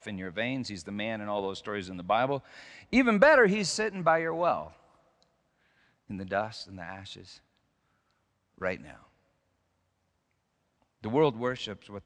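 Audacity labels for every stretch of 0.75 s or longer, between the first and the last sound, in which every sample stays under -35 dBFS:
4.680000	6.100000	silence
7.180000	8.620000	silence
8.900000	11.040000	silence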